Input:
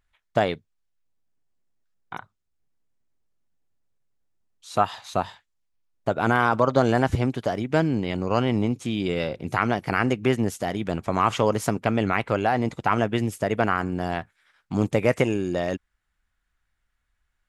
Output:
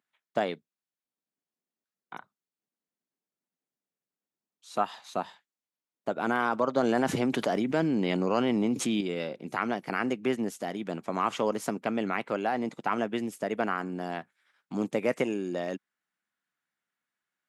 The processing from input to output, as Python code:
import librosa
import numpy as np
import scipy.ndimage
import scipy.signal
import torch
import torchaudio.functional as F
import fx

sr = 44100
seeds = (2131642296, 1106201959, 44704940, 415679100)

y = scipy.signal.sosfilt(scipy.signal.butter(4, 190.0, 'highpass', fs=sr, output='sos'), x)
y = fx.low_shelf(y, sr, hz=250.0, db=4.0)
y = fx.env_flatten(y, sr, amount_pct=70, at=(6.83, 9.01))
y = y * librosa.db_to_amplitude(-7.0)